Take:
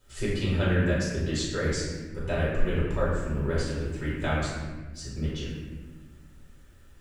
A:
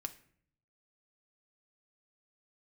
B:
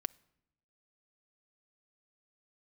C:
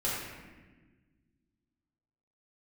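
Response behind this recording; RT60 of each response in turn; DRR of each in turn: C; 0.55 s, no single decay rate, 1.3 s; 7.0 dB, 12.0 dB, -9.0 dB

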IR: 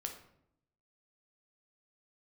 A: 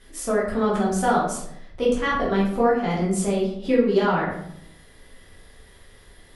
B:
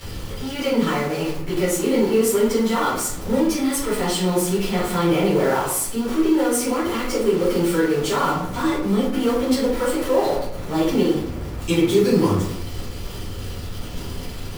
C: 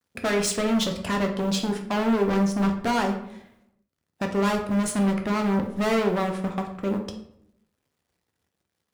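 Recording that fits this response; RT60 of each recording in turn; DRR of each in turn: C; 0.70 s, 0.70 s, 0.75 s; -6.5 dB, -14.5 dB, 3.0 dB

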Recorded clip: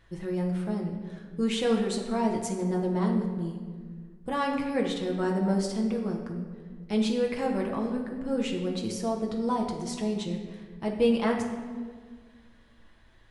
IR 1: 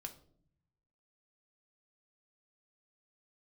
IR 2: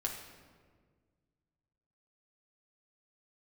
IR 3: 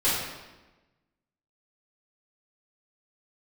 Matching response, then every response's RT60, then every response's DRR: 2; 0.60 s, 1.7 s, 1.1 s; 4.5 dB, -0.5 dB, -12.5 dB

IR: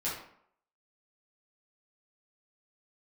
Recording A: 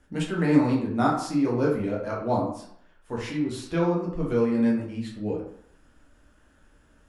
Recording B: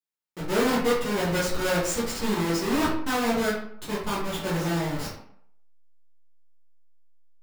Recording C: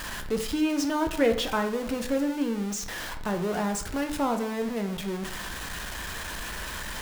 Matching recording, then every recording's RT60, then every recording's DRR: B; 0.65 s, 0.65 s, 0.65 s; -4.0 dB, -9.0 dB, 5.0 dB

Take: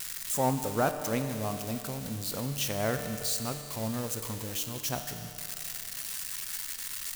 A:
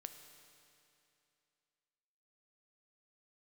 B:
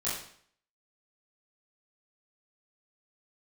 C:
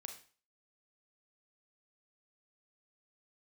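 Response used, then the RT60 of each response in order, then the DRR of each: A; 2.7 s, 0.60 s, 0.40 s; 6.5 dB, -10.0 dB, 4.0 dB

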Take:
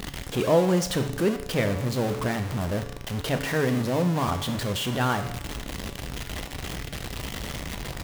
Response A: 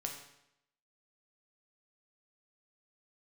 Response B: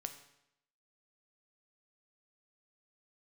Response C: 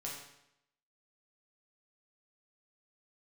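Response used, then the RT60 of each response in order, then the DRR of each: B; 0.80 s, 0.80 s, 0.80 s; 1.5 dB, 7.0 dB, -4.0 dB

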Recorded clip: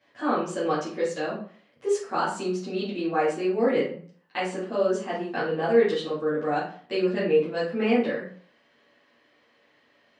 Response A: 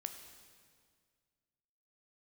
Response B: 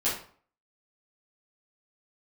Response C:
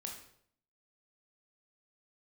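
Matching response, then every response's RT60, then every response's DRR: B; 1.9 s, 0.50 s, 0.65 s; 6.0 dB, -10.5 dB, 0.5 dB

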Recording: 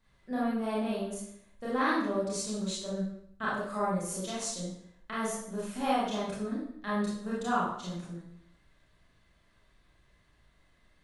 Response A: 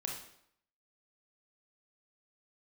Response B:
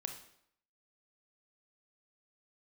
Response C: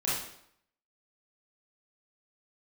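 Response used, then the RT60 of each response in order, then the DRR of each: C; 0.70 s, 0.70 s, 0.70 s; -0.5 dB, 5.0 dB, -8.5 dB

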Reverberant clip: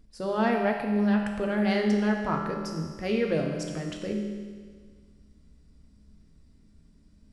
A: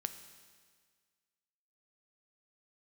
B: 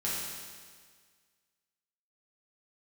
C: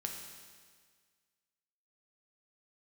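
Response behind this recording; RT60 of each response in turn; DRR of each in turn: C; 1.7 s, 1.7 s, 1.7 s; 9.0 dB, -8.0 dB, 1.5 dB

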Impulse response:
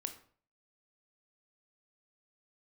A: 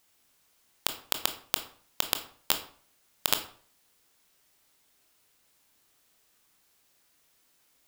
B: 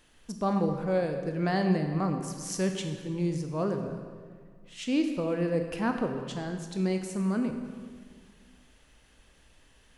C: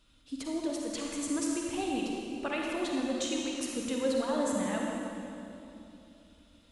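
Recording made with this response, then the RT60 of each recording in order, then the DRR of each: A; 0.50 s, 1.8 s, 2.9 s; 7.0 dB, 5.0 dB, -1.5 dB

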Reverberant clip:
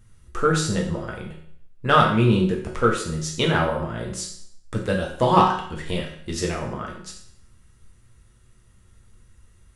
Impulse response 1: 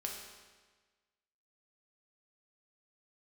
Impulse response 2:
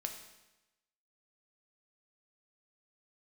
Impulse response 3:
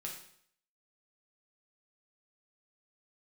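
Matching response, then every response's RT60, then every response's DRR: 3; 1.4 s, 1.0 s, 0.65 s; -0.5 dB, 3.5 dB, -2.0 dB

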